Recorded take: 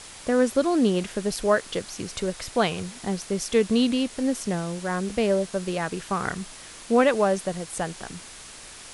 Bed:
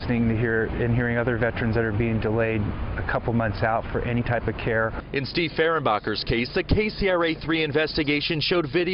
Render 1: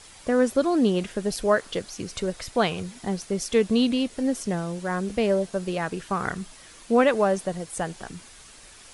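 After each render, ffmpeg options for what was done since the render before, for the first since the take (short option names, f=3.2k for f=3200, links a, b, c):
-af "afftdn=nr=7:nf=-43"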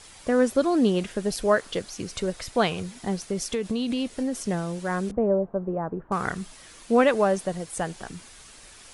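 -filter_complex "[0:a]asettb=1/sr,asplit=3[a][b][c];[a]atrim=end=3.254[d];[b]atrim=start=3.25:end=4.38,asetpts=PTS-STARTPTS,afade=t=in:d=0.004:c=qsin,afade=t=out:st=1.126:d=0.004:c=qsin,acompressor=threshold=-22dB:ratio=12:attack=3.2:release=140:knee=1:detection=peak[e];[c]atrim=start=4.376[f];[d][e]acrossfade=d=0.004:c1=hsin:c2=qsin[g];[g][f]acrossfade=d=0.004:c1=qsin:c2=hsin,asettb=1/sr,asplit=3[h][i][j];[h]atrim=end=5.114[k];[i]atrim=start=5.11:end=6.12,asetpts=PTS-STARTPTS,afade=t=in:d=0.004:c=qsin,afade=t=out:st=1.006:d=0.004:c=qsin,lowpass=f=1.1k:w=0.5412,lowpass=f=1.1k:w=1.3066[l];[j]atrim=start=6.116[m];[k][l]acrossfade=d=0.004:c1=hsin:c2=qsin[n];[n][m]acrossfade=d=0.004:c1=qsin:c2=hsin"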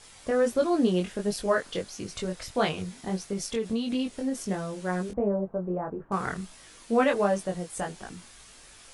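-af "flanger=delay=19.5:depth=3.1:speed=1.5"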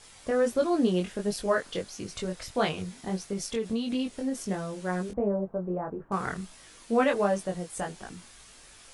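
-af "volume=-1dB"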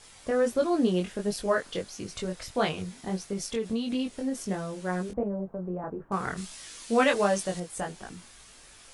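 -filter_complex "[0:a]asettb=1/sr,asplit=3[a][b][c];[a]atrim=end=5.234[d];[b]atrim=start=5.23:end=5.84,asetpts=PTS-STARTPTS,afade=t=in:d=0.004:c=qsin,afade=t=out:st=0.606:d=0.004:c=qsin,acrossover=split=230|3000[e][f][g];[f]acompressor=threshold=-33dB:ratio=6:attack=3.2:release=140:knee=2.83:detection=peak[h];[e][h][g]amix=inputs=3:normalize=0[i];[c]atrim=start=5.836[j];[d][i]acrossfade=d=0.004:c1=hsin:c2=qsin[k];[k][j]acrossfade=d=0.004:c1=qsin:c2=hsin,asettb=1/sr,asplit=3[l][m][n];[l]atrim=end=6.374[o];[m]atrim=start=6.37:end=7.6,asetpts=PTS-STARTPTS,afade=t=in:d=0.004:c=qsin,afade=t=out:st=1.226:d=0.004:c=qsin,equalizer=f=6.1k:w=0.33:g=9.5[p];[n]atrim=start=7.596[q];[o][p]acrossfade=d=0.004:c1=hsin:c2=qsin[r];[r][q]acrossfade=d=0.004:c1=qsin:c2=hsin"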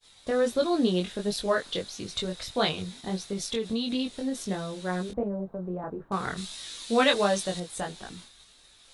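-af "agate=range=-33dB:threshold=-45dB:ratio=3:detection=peak,equalizer=f=3.8k:t=o:w=0.34:g=14"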